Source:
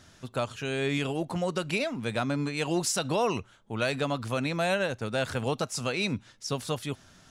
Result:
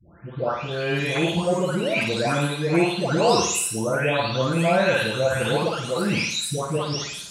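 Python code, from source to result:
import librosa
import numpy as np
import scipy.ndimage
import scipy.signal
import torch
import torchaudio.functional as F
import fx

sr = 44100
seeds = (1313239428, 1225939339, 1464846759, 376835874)

y = fx.spec_delay(x, sr, highs='late', ms=715)
y = scipy.signal.sosfilt(scipy.signal.butter(2, 45.0, 'highpass', fs=sr, output='sos'), y)
y = fx.room_flutter(y, sr, wall_m=9.3, rt60_s=0.6)
y = y * librosa.db_to_amplitude(8.0)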